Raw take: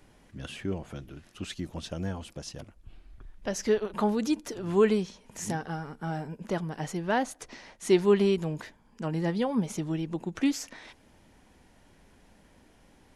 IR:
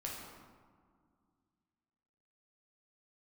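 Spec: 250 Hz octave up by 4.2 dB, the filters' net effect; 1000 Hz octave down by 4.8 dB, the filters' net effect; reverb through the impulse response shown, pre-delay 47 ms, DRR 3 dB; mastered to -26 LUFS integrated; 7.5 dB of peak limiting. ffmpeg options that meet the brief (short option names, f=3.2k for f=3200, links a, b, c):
-filter_complex "[0:a]equalizer=f=250:t=o:g=6,equalizer=f=1k:t=o:g=-7,alimiter=limit=-17dB:level=0:latency=1,asplit=2[a][b];[1:a]atrim=start_sample=2205,adelay=47[c];[b][c]afir=irnorm=-1:irlink=0,volume=-3dB[d];[a][d]amix=inputs=2:normalize=0,volume=1.5dB"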